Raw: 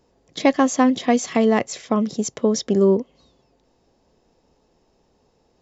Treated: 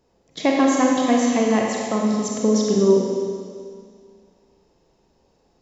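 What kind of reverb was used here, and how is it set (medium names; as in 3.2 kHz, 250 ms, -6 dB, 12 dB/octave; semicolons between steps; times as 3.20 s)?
Schroeder reverb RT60 2.1 s, combs from 33 ms, DRR -2 dB; trim -3.5 dB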